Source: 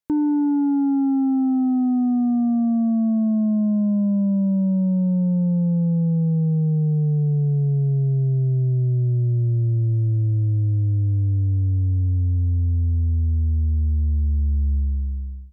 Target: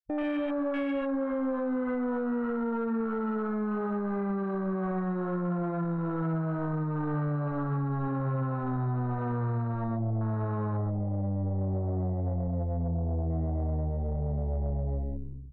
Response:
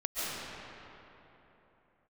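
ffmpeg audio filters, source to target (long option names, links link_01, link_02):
-filter_complex "[0:a]asuperstop=centerf=840:order=8:qfactor=1.7,aecho=1:1:75:0.119,aeval=exprs='0.188*(cos(1*acos(clip(val(0)/0.188,-1,1)))-cos(1*PI/2))+0.0841*(cos(2*acos(clip(val(0)/0.188,-1,1)))-cos(2*PI/2))+0.00668*(cos(5*acos(clip(val(0)/0.188,-1,1)))-cos(5*PI/2))+0.0015*(cos(6*acos(clip(val(0)/0.188,-1,1)))-cos(6*PI/2))+0.0376*(cos(8*acos(clip(val(0)/0.188,-1,1)))-cos(8*PI/2))':channel_layout=same,afwtdn=0.0501[link_01];[1:a]atrim=start_sample=2205,atrim=end_sample=6174[link_02];[link_01][link_02]afir=irnorm=-1:irlink=0,acontrast=54,lowshelf=frequency=350:gain=-10,alimiter=limit=-19.5dB:level=0:latency=1:release=56,asoftclip=type=tanh:threshold=-17.5dB,asettb=1/sr,asplit=3[link_03][link_04][link_05];[link_03]atrim=end=12.884[link_06];[link_04]atrim=start=12.88:end=13.31,asetpts=PTS-STARTPTS,afade=type=in:duration=0.004:curve=qsin,afade=type=out:start_time=0.426:duration=0.004:curve=qsin,lowpass=1200[link_07];[link_05]atrim=start=13.306[link_08];[link_06][link_07]acrossfade=duration=0.004:curve1=hsin:curve2=qsin[link_09];[link_09][link_08]acrossfade=duration=0.004:curve1=qsin:curve2=hsin,volume=-3.5dB"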